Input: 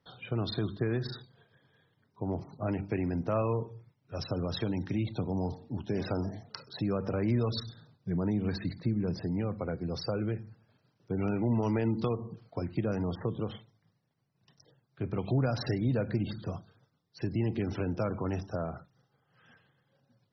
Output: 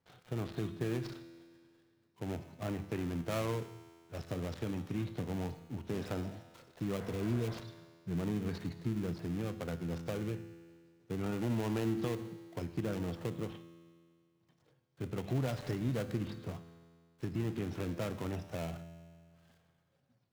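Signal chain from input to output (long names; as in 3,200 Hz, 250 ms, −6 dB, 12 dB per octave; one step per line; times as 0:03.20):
gap after every zero crossing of 0.26 ms
tuned comb filter 84 Hz, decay 2 s, harmonics all, mix 70%
healed spectral selection 0:06.99–0:07.52, 530–2,200 Hz after
level +4.5 dB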